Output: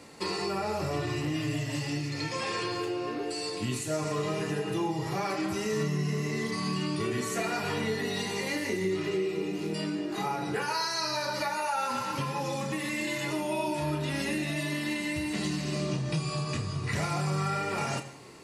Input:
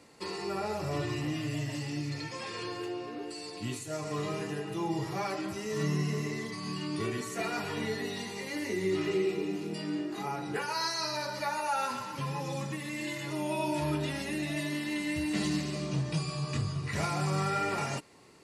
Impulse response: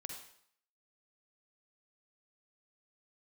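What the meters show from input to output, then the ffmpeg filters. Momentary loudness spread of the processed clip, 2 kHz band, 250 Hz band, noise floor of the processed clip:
3 LU, +3.5 dB, +2.0 dB, -35 dBFS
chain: -filter_complex "[0:a]acompressor=threshold=-35dB:ratio=6,asplit=2[a][b];[1:a]atrim=start_sample=2205,adelay=32[c];[b][c]afir=irnorm=-1:irlink=0,volume=-5dB[d];[a][d]amix=inputs=2:normalize=0,volume=7dB"

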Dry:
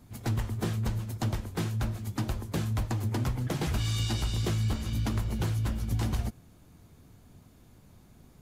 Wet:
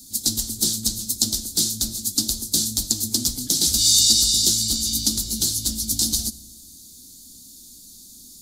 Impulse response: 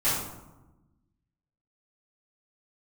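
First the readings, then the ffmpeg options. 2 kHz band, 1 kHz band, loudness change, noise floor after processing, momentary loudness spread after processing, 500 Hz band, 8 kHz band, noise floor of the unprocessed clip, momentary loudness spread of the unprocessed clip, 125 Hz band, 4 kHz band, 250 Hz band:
n/a, under -10 dB, +12.0 dB, -45 dBFS, 8 LU, -3.5 dB, +26.5 dB, -57 dBFS, 4 LU, -8.0 dB, +20.5 dB, +3.0 dB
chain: -filter_complex "[0:a]equalizer=f=125:t=o:w=1:g=-12,equalizer=f=250:t=o:w=1:g=11,equalizer=f=500:t=o:w=1:g=-6,equalizer=f=1k:t=o:w=1:g=-11,equalizer=f=2k:t=o:w=1:g=-9,equalizer=f=4k:t=o:w=1:g=11,equalizer=f=8k:t=o:w=1:g=4,asplit=2[a][b];[1:a]atrim=start_sample=2205,afade=t=out:st=0.35:d=0.01,atrim=end_sample=15876,asetrate=26901,aresample=44100[c];[b][c]afir=irnorm=-1:irlink=0,volume=-33.5dB[d];[a][d]amix=inputs=2:normalize=0,aexciter=amount=8.1:drive=7.3:freq=4k,volume=-1dB"

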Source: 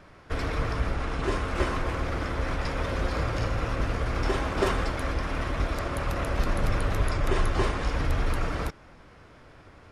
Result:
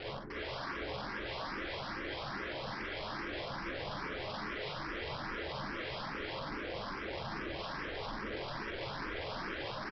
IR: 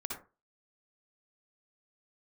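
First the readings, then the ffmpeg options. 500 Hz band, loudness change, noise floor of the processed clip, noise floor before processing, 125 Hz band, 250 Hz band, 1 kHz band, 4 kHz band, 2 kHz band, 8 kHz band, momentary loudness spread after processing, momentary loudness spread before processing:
-9.5 dB, -10.5 dB, -42 dBFS, -52 dBFS, -18.0 dB, -10.5 dB, -8.5 dB, -3.0 dB, -6.0 dB, -19.5 dB, 1 LU, 4 LU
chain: -filter_complex "[0:a]lowpass=f=1.9k:w=0.5412,lowpass=f=1.9k:w=1.3066,lowshelf=f=620:t=q:w=3:g=11,bandreject=f=168.6:t=h:w=4,bandreject=f=337.2:t=h:w=4,bandreject=f=505.8:t=h:w=4,bandreject=f=674.4:t=h:w=4,bandreject=f=843:t=h:w=4,areverse,acompressor=threshold=-28dB:ratio=8,areverse,alimiter=level_in=7dB:limit=-24dB:level=0:latency=1:release=90,volume=-7dB,aresample=11025,aeval=exprs='(mod(106*val(0)+1,2)-1)/106':c=same,aresample=44100[a];[1:a]atrim=start_sample=2205,asetrate=61740,aresample=44100[b];[a][b]afir=irnorm=-1:irlink=0,asplit=2[c][d];[d]afreqshift=2.4[e];[c][e]amix=inputs=2:normalize=1,volume=9.5dB"

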